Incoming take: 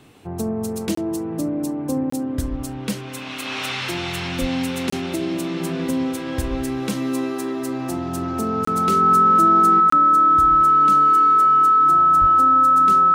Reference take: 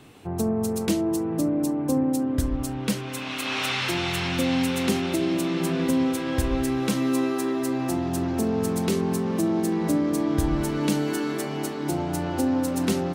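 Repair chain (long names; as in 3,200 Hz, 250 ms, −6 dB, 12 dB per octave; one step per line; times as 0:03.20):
notch filter 1,300 Hz, Q 30
0:04.40–0:04.52: high-pass filter 140 Hz 24 dB per octave
0:12.20–0:12.32: high-pass filter 140 Hz 24 dB per octave
repair the gap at 0:00.95/0:02.10/0:04.90/0:08.65/0:09.90, 24 ms
0:09.80: level correction +6.5 dB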